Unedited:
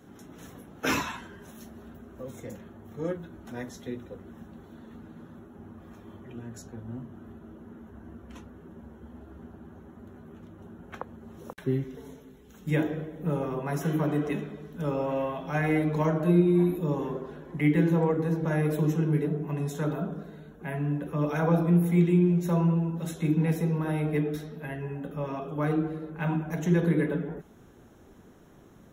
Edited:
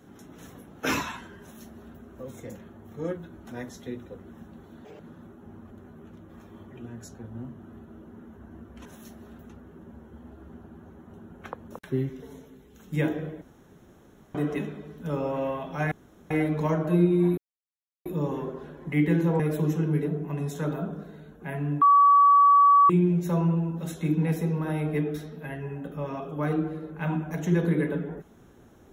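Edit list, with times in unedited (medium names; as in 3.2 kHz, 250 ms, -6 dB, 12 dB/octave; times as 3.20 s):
1.41–2.05 s: copy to 8.39 s
4.85–5.12 s: speed 186%
10.00–10.59 s: move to 5.83 s
11.19–11.45 s: delete
13.16–14.09 s: room tone
15.66 s: insert room tone 0.39 s
16.73 s: insert silence 0.68 s
18.07–18.59 s: delete
21.01–22.09 s: bleep 1.14 kHz -13.5 dBFS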